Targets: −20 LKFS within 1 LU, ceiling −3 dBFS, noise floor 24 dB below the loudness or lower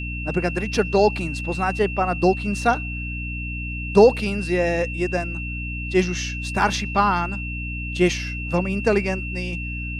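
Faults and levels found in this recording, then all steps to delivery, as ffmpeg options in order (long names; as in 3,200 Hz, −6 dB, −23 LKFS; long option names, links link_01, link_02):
mains hum 60 Hz; hum harmonics up to 300 Hz; level of the hum −28 dBFS; interfering tone 2,700 Hz; level of the tone −31 dBFS; integrated loudness −22.5 LKFS; sample peak −2.0 dBFS; target loudness −20.0 LKFS
→ -af "bandreject=frequency=60:width_type=h:width=6,bandreject=frequency=120:width_type=h:width=6,bandreject=frequency=180:width_type=h:width=6,bandreject=frequency=240:width_type=h:width=6,bandreject=frequency=300:width_type=h:width=6"
-af "bandreject=frequency=2700:width=30"
-af "volume=2.5dB,alimiter=limit=-3dB:level=0:latency=1"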